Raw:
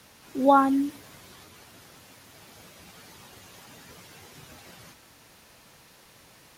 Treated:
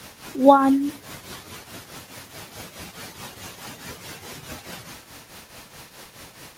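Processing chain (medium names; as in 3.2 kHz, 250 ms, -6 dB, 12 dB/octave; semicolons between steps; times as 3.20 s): in parallel at +1 dB: compression, threshold -42 dBFS, peak gain reduction 25 dB; on the sum: tremolo triangle 4.7 Hz, depth 70%; trim +7 dB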